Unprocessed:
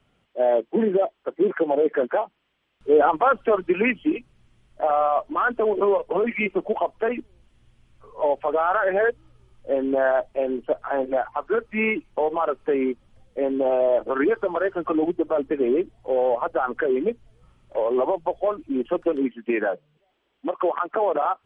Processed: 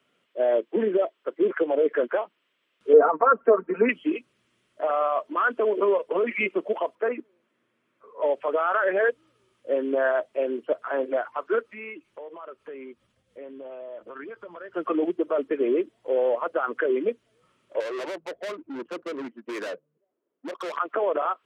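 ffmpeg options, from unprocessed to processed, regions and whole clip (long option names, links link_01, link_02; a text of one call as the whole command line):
ffmpeg -i in.wav -filter_complex "[0:a]asettb=1/sr,asplit=3[link_01][link_02][link_03];[link_01]atrim=end=2.934[link_04];[link_02]atrim=start=2.93:end=3.89,asetpts=PTS-STARTPTS,afade=type=in:duration=0.004:curve=qsin,afade=type=out:start_time=0.956:duration=0.004:curve=qsin,lowpass=frequency=1500:width=0.5412,lowpass=frequency=1500:width=1.3066,aecho=1:1:4.4:0.75,atrim=end_sample=42336[link_05];[link_03]atrim=start=3.886[link_06];[link_04][link_05]acrossfade=duration=0.004:curve1=hsin:curve2=qsin[link_07];[link_07][link_06]acrossfade=duration=0.004:curve1=qsin:curve2=hsin,asettb=1/sr,asplit=3[link_08][link_09][link_10];[link_08]atrim=end=6.954[link_11];[link_09]atrim=start=6.95:end=8.22,asetpts=PTS-STARTPTS,afade=type=in:duration=0.004:curve=qsin,afade=type=out:start_time=1.266:duration=0.004:curve=qsin,acrossover=split=150 2300:gain=0.0794 1 0.224[link_12][link_13][link_14];[link_12][link_13][link_14]amix=inputs=3:normalize=0,bandreject=frequency=2900:width=20[link_15];[link_10]atrim=start=8.216[link_16];[link_11][link_15]acrossfade=duration=0.004:curve1=hsin:curve2=qsin[link_17];[link_17][link_16]acrossfade=duration=0.004:curve1=qsin:curve2=hsin,asettb=1/sr,asplit=3[link_18][link_19][link_20];[link_18]atrim=end=11.614[link_21];[link_19]atrim=start=11.61:end=14.74,asetpts=PTS-STARTPTS,afade=type=in:duration=0.004:curve=qsin,afade=type=out:start_time=3.126:duration=0.004:curve=qsin,bandreject=frequency=50:width_type=h:width=6,bandreject=frequency=100:width_type=h:width=6,bandreject=frequency=150:width_type=h:width=6,asubboost=boost=11.5:cutoff=120,acompressor=threshold=-41dB:ratio=2.5:attack=3.2:release=140:knee=1:detection=peak[link_22];[link_20]atrim=start=14.736[link_23];[link_21][link_22]acrossfade=duration=0.004:curve1=hsin:curve2=qsin[link_24];[link_24][link_23]acrossfade=duration=0.004:curve1=qsin:curve2=hsin,asettb=1/sr,asplit=3[link_25][link_26][link_27];[link_25]atrim=end=17.804[link_28];[link_26]atrim=start=17.8:end=20.77,asetpts=PTS-STARTPTS,afade=type=in:duration=0.004:curve=qsin,afade=type=out:start_time=2.966:duration=0.004:curve=qsin,asoftclip=type=hard:threshold=-28dB,adynamicsmooth=sensitivity=4.5:basefreq=620[link_29];[link_27]atrim=start=20.766[link_30];[link_28][link_29]acrossfade=duration=0.004:curve1=hsin:curve2=qsin[link_31];[link_31][link_30]acrossfade=duration=0.004:curve1=qsin:curve2=hsin,highpass=310,equalizer=frequency=800:width=4.5:gain=-11.5" out.wav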